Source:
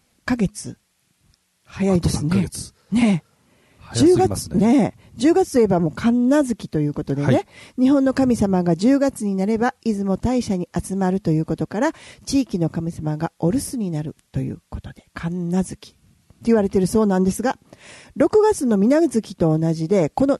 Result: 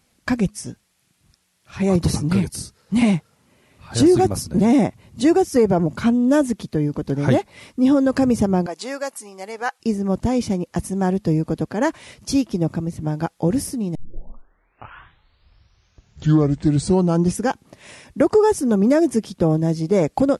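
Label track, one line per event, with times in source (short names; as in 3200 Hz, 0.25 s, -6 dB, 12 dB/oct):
8.660000	9.800000	HPF 800 Hz
13.950000	13.950000	tape start 3.54 s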